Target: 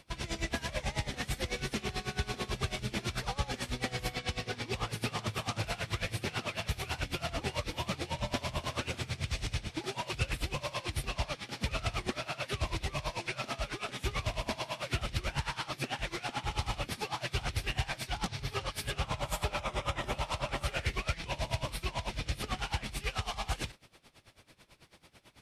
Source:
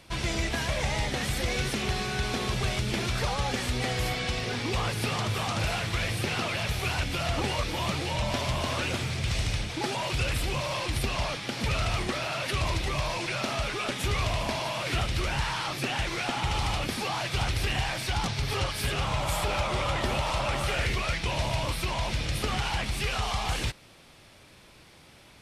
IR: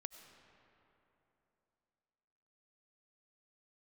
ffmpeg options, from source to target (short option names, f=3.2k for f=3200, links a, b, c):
-filter_complex "[0:a]asettb=1/sr,asplit=3[a][b][c];[a]atrim=end=19.594[d];[b]atrim=start=19.59:end=20.12,asetpts=PTS-STARTPTS,afade=t=in:d=0.004:c=qsin,afade=t=out:st=0.526:d=0.004:c=qsin,bandreject=f=4.4k:w=6.9[e];[c]atrim=start=20.116[f];[d][e]acrossfade=d=0.004:c1=hsin:c2=qsin[g];[g][f]acrossfade=d=0.004:c1=qsin:c2=hsin,aeval=exprs='val(0)*pow(10,-19*(0.5-0.5*cos(2*PI*9.1*n/s))/20)':c=same,volume=-1.5dB"